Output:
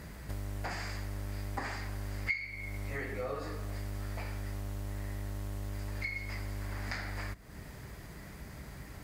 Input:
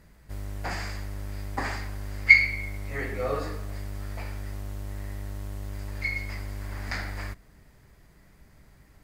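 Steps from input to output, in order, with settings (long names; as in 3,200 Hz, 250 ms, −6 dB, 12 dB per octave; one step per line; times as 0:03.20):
high-pass filter 48 Hz
downward compressor 4 to 1, threshold −49 dBFS, peak gain reduction 31.5 dB
level +10.5 dB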